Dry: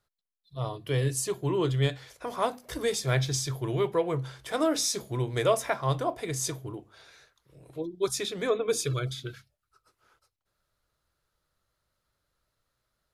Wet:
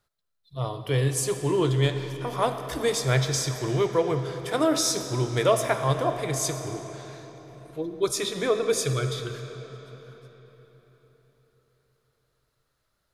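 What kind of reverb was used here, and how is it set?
digital reverb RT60 4.4 s, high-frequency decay 0.75×, pre-delay 20 ms, DRR 7.5 dB; gain +3 dB

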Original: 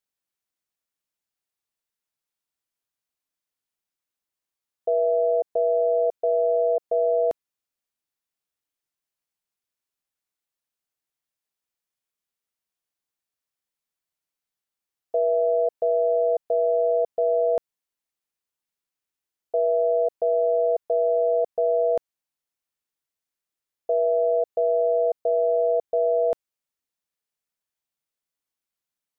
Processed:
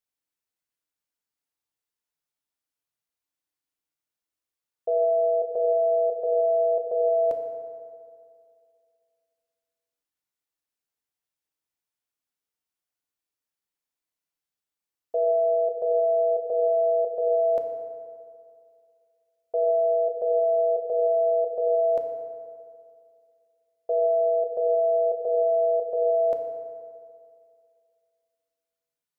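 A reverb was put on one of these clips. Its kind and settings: FDN reverb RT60 2.3 s, low-frequency decay 0.9×, high-frequency decay 0.5×, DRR 3.5 dB; gain -3.5 dB

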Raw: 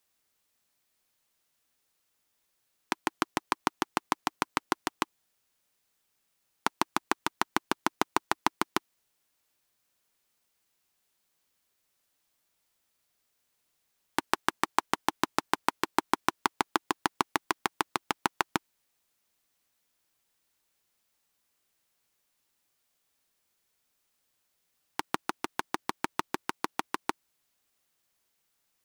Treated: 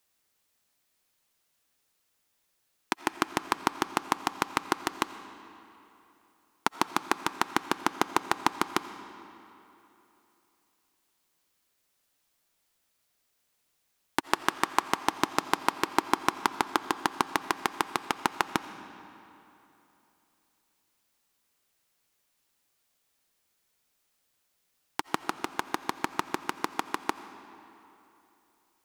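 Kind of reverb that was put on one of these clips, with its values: digital reverb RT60 3.1 s, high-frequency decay 0.75×, pre-delay 45 ms, DRR 12 dB; gain +1.5 dB

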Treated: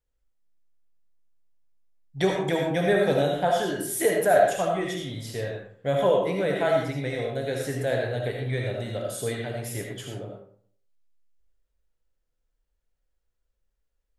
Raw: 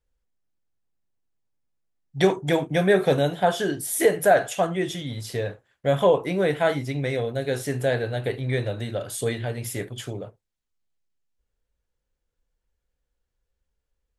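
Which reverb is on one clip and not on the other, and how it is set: digital reverb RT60 0.58 s, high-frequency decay 0.6×, pre-delay 35 ms, DRR 0.5 dB; gain -4.5 dB

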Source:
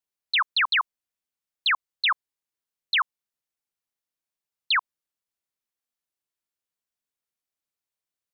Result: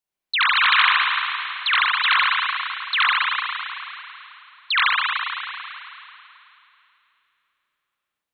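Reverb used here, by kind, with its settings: spring tank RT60 2.9 s, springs 33/53 ms, chirp 45 ms, DRR -8 dB

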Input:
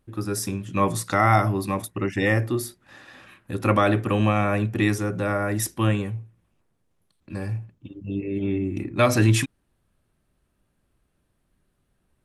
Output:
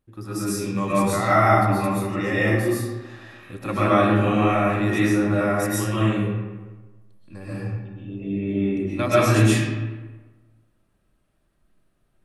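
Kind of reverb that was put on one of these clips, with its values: digital reverb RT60 1.3 s, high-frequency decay 0.6×, pre-delay 90 ms, DRR -10 dB; gain -8 dB

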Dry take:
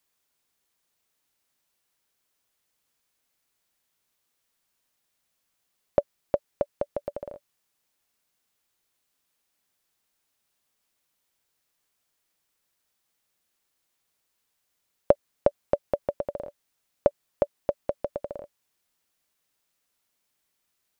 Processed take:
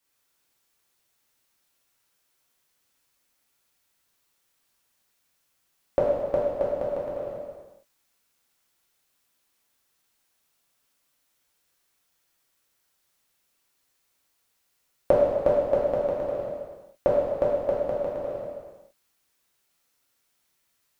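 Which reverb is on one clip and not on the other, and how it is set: non-linear reverb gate 0.49 s falling, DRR -7.5 dB; gain -3.5 dB

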